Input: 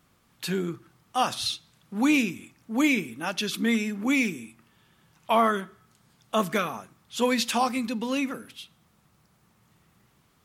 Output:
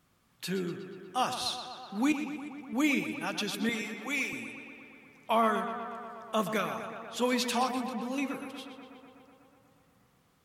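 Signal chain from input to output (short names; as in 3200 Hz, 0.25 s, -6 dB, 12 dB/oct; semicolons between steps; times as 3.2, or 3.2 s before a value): 2.12–2.73 compressor 2.5:1, threshold -41 dBFS, peak gain reduction 14.5 dB; 3.69–4.33 Bessel high-pass 570 Hz, order 2; 7.71–8.18 bell 1800 Hz -13.5 dB 2.7 oct; tape echo 0.122 s, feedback 82%, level -8.5 dB, low-pass 4300 Hz; gain -5 dB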